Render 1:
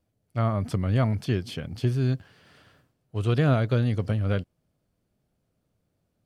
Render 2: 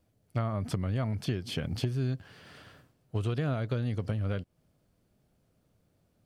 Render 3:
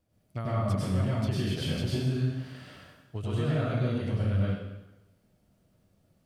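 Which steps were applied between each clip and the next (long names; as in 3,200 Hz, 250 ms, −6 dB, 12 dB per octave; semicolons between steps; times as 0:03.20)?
downward compressor 12 to 1, threshold −31 dBFS, peak gain reduction 14 dB; level +4 dB
dense smooth reverb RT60 1 s, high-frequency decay 0.95×, pre-delay 85 ms, DRR −7 dB; level −5 dB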